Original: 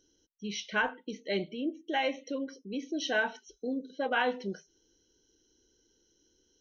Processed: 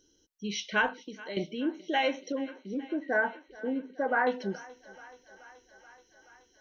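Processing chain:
0:00.92–0:01.37: downward compressor 2 to 1, threshold −47 dBFS, peak gain reduction 11 dB
0:02.32–0:04.27: elliptic low-pass filter 2,000 Hz
feedback echo with a high-pass in the loop 428 ms, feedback 78%, high-pass 370 Hz, level −20 dB
level +2.5 dB

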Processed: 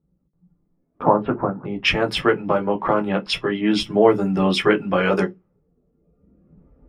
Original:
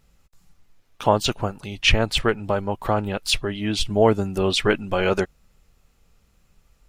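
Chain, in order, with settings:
camcorder AGC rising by 5.7 dB per second
0:01.02–0:01.65: low-pass filter 1,600 Hz 24 dB per octave
noise reduction from a noise print of the clip's start 10 dB
low-pass that shuts in the quiet parts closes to 320 Hz, open at −17 dBFS
downward compressor 1.5 to 1, threshold −36 dBFS, peak gain reduction 9 dB
convolution reverb RT60 0.15 s, pre-delay 11 ms, DRR 3 dB
level +1.5 dB

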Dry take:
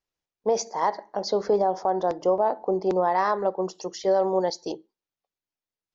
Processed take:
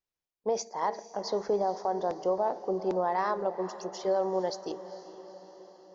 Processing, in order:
feedback delay with all-pass diffusion 453 ms, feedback 58%, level −14.5 dB
level −6 dB

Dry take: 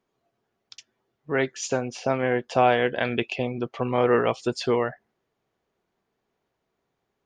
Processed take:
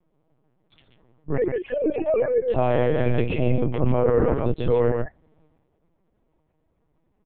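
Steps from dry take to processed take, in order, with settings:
0:01.38–0:02.42: three sine waves on the formant tracks
0:03.98–0:04.46: low-pass filter 2,400 Hz 24 dB per octave
transient designer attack −4 dB, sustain +9 dB
single-tap delay 134 ms −5.5 dB
downward compressor 4 to 1, threshold −23 dBFS, peak gain reduction 8.5 dB
spectral tilt −4 dB per octave
notch filter 1,500 Hz, Q 7.4
comb filter 6.4 ms, depth 75%
linear-prediction vocoder at 8 kHz pitch kept
level −1 dB

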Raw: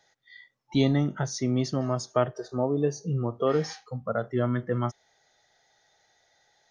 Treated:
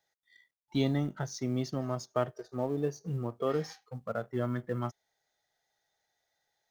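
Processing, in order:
mu-law and A-law mismatch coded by A
level −5.5 dB

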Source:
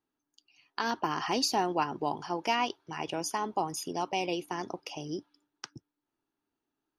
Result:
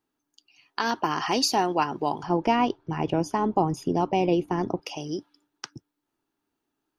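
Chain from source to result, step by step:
0:02.23–0:04.82: spectral tilt −4 dB per octave
level +5 dB

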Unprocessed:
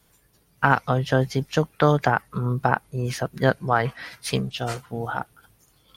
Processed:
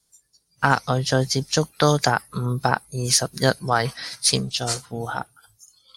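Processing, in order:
flat-topped bell 6,500 Hz +14.5 dB
noise reduction from a noise print of the clip's start 15 dB
0:01.61–0:04.00: high-shelf EQ 5,000 Hz +7 dB

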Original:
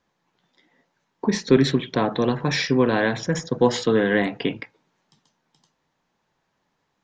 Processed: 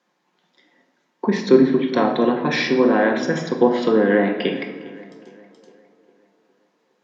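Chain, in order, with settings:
tape delay 409 ms, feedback 53%, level −18 dB, low-pass 2,400 Hz
treble cut that deepens with the level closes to 1,200 Hz, closed at −14 dBFS
high-pass filter 200 Hz 24 dB per octave
rectangular room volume 660 cubic metres, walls mixed, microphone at 0.93 metres
level +2.5 dB

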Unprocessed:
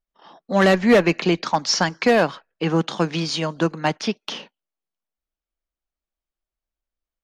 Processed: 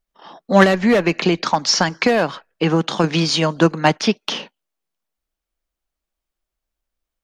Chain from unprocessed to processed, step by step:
0:00.63–0:03.04: downward compressor 5 to 1, threshold −19 dBFS, peak gain reduction 8.5 dB
level +6.5 dB

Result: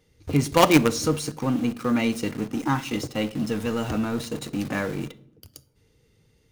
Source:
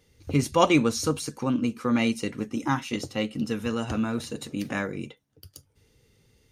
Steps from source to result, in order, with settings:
high-shelf EQ 2,400 Hz −3.5 dB
in parallel at −10.5 dB: log-companded quantiser 2 bits
on the sum: convolution reverb RT60 0.75 s, pre-delay 6 ms, DRR 14 dB

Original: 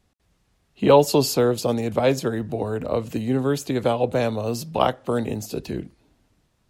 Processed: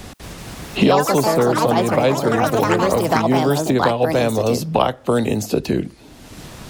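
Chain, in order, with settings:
delay with pitch and tempo change per echo 232 ms, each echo +5 semitones, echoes 3
multiband upward and downward compressor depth 100%
level +3 dB

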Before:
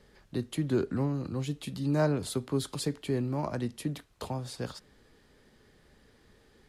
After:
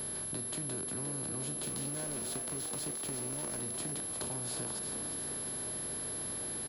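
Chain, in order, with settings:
compressor on every frequency bin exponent 0.4
downward compressor 6 to 1, threshold −29 dBFS, peak gain reduction 10 dB
parametric band 410 Hz −6 dB 2.6 octaves
0:01.63–0:03.61: centre clipping without the shift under −37.5 dBFS
echo with shifted repeats 355 ms, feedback 59%, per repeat +84 Hz, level −7 dB
steady tone 11,000 Hz −31 dBFS
level −6 dB

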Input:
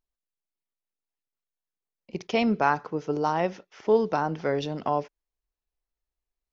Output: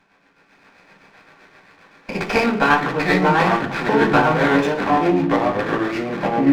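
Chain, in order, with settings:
compressor on every frequency bin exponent 0.6
automatic gain control gain up to 10.5 dB
delay with pitch and tempo change per echo 105 ms, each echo −4 semitones, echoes 2
amplitude tremolo 7.7 Hz, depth 52%
in parallel at −1 dB: downward compressor, threshold −29 dBFS, peak gain reduction 18 dB
on the sum: parametric band 1,800 Hz +11 dB 1.8 octaves
convolution reverb RT60 0.45 s, pre-delay 3 ms, DRR −11.5 dB
windowed peak hold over 5 samples
level −17.5 dB

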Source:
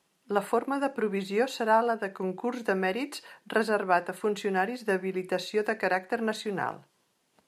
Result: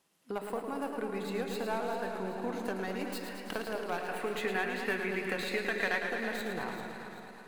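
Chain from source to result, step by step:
stylus tracing distortion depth 0.081 ms
camcorder AGC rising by 5.9 dB per second
high-shelf EQ 11,000 Hz +6.5 dB
convolution reverb, pre-delay 3 ms, DRR 14 dB
downward compressor 2 to 1, threshold −36 dBFS, peak gain reduction 10 dB
0:03.98–0:06.03: parametric band 2,200 Hz +13 dB 1.2 octaves
delay that swaps between a low-pass and a high-pass 196 ms, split 880 Hz, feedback 66%, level −7 dB
feedback echo with a swinging delay time 110 ms, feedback 78%, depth 78 cents, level −7.5 dB
level −3.5 dB

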